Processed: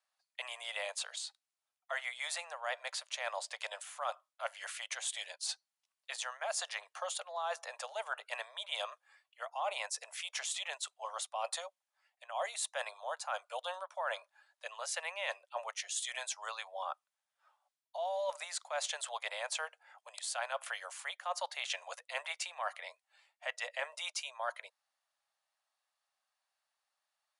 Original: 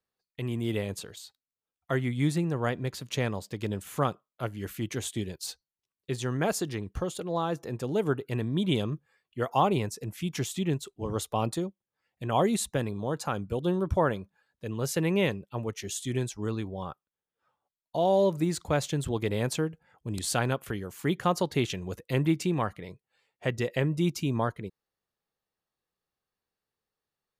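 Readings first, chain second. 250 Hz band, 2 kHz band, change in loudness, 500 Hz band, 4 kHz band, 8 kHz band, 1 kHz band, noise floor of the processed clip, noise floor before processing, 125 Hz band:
under -40 dB, -1.5 dB, -9.0 dB, -13.0 dB, -1.0 dB, -2.0 dB, -7.0 dB, under -85 dBFS, under -85 dBFS, under -40 dB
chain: steep high-pass 590 Hz 72 dB/octave; reverse; compression 8:1, threshold -39 dBFS, peak gain reduction 19 dB; reverse; brick-wall FIR low-pass 11 kHz; trim +4.5 dB

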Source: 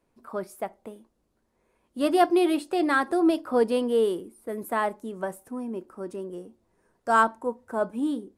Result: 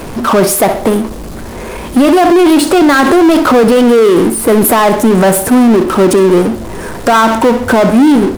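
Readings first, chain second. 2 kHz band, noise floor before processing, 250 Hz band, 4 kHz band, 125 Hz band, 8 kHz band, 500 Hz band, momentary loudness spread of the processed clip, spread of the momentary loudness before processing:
+15.5 dB, -73 dBFS, +20.0 dB, +20.0 dB, no reading, +28.5 dB, +18.0 dB, 11 LU, 15 LU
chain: bass shelf 180 Hz +4.5 dB; power-law waveshaper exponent 0.5; feedback delay 63 ms, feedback 40%, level -15 dB; loudness maximiser +17.5 dB; trim -1 dB

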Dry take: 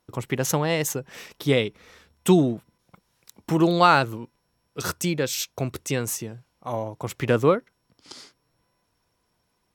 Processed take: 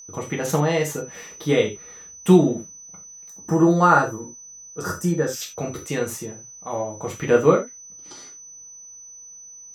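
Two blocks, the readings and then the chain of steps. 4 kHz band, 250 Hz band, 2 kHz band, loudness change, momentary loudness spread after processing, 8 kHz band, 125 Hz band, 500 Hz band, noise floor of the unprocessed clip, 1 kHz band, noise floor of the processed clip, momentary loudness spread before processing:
-4.5 dB, +3.5 dB, +1.0 dB, +2.5 dB, 23 LU, +1.5 dB, +2.0 dB, +3.5 dB, -73 dBFS, +1.5 dB, -43 dBFS, 15 LU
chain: treble shelf 3 kHz -8 dB; gated-style reverb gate 110 ms falling, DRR -2 dB; whistle 6 kHz -39 dBFS; time-frequency box 3.29–5.42 s, 1.9–4.7 kHz -12 dB; trim -1 dB

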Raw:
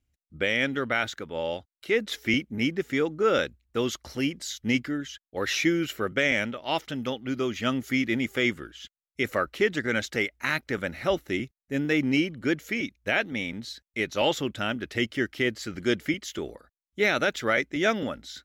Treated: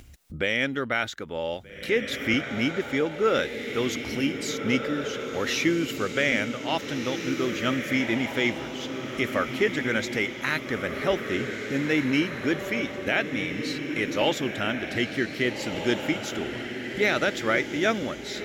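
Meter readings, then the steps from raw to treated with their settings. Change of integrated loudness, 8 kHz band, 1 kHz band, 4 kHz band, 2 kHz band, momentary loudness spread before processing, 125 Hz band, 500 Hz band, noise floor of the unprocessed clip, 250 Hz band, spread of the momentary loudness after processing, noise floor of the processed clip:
+1.0 dB, +1.5 dB, +1.0 dB, +1.0 dB, +1.0 dB, 8 LU, +1.5 dB, +1.0 dB, under -85 dBFS, +1.0 dB, 6 LU, -37 dBFS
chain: upward compressor, threshold -29 dBFS; on a send: echo that smears into a reverb 1668 ms, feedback 43%, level -6 dB

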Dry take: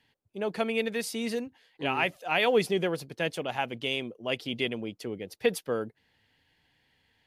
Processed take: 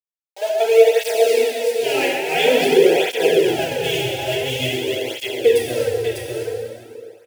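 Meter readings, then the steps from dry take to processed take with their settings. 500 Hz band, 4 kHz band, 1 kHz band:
+15.0 dB, +11.5 dB, +8.5 dB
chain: small samples zeroed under -32.5 dBFS; static phaser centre 480 Hz, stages 4; high-pass sweep 710 Hz -> 86 Hz, 0.35–3.55 s; delay 600 ms -5 dB; plate-style reverb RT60 2.5 s, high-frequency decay 0.8×, DRR -5 dB; cancelling through-zero flanger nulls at 0.48 Hz, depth 4.6 ms; trim +8.5 dB

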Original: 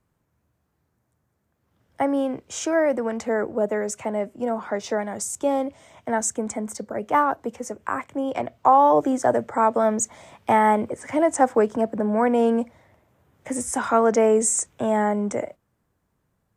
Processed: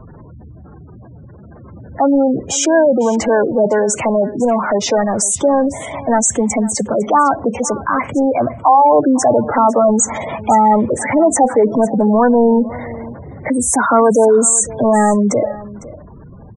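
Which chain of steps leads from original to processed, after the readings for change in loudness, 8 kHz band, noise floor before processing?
+9.0 dB, +11.5 dB, -73 dBFS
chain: power-law waveshaper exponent 0.5; spectral gate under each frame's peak -15 dB strong; delay 504 ms -18.5 dB; trim +2.5 dB

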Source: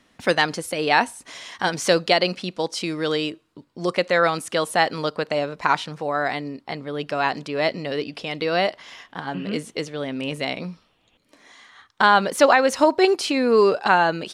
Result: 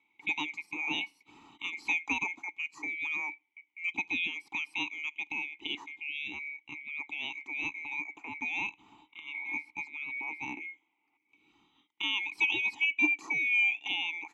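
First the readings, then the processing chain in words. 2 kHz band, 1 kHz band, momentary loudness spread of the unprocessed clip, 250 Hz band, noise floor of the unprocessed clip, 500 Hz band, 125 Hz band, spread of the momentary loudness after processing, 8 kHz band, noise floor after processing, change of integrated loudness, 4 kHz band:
-5.5 dB, -23.0 dB, 13 LU, -18.0 dB, -63 dBFS, -35.5 dB, -26.5 dB, 13 LU, -19.0 dB, -77 dBFS, -10.5 dB, -10.0 dB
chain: split-band scrambler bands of 2 kHz; dynamic bell 5.6 kHz, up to +5 dB, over -36 dBFS, Q 1.2; vowel filter u

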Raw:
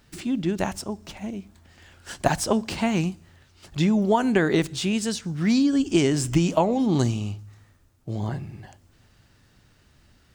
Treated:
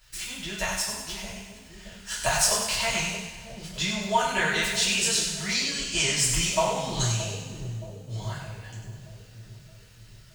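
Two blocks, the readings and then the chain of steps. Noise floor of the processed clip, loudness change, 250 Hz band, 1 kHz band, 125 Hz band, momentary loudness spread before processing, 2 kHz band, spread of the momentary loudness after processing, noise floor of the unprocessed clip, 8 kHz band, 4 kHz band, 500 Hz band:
-50 dBFS, -1.5 dB, -14.5 dB, -0.5 dB, -5.5 dB, 14 LU, +5.0 dB, 18 LU, -59 dBFS, +9.5 dB, +7.5 dB, -6.0 dB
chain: amplifier tone stack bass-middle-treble 10-0-10; two-band feedback delay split 530 Hz, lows 622 ms, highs 97 ms, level -6.5 dB; two-slope reverb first 0.45 s, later 2.5 s, from -19 dB, DRR -8 dB

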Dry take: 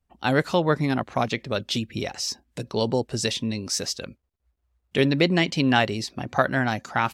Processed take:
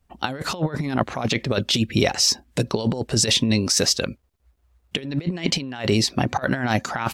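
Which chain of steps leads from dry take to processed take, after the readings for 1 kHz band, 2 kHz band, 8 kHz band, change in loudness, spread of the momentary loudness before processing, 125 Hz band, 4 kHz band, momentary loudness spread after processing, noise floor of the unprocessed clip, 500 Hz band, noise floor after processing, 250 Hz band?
-1.5 dB, -1.5 dB, +9.0 dB, +2.5 dB, 10 LU, +3.0 dB, +6.0 dB, 9 LU, -75 dBFS, -1.0 dB, -65 dBFS, +1.5 dB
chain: compressor with a negative ratio -27 dBFS, ratio -0.5; trim +6 dB

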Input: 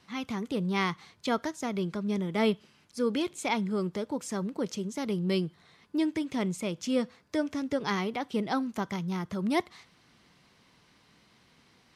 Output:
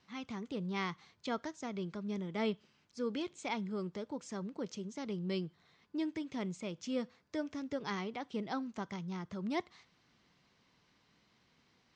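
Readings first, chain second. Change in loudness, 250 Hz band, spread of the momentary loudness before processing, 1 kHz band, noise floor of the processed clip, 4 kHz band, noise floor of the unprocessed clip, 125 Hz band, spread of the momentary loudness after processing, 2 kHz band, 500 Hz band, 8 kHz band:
-8.5 dB, -8.5 dB, 5 LU, -8.5 dB, -72 dBFS, -8.5 dB, -63 dBFS, -8.5 dB, 5 LU, -8.5 dB, -8.5 dB, -10.5 dB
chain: steep low-pass 7.4 kHz 36 dB/octave; trim -8.5 dB

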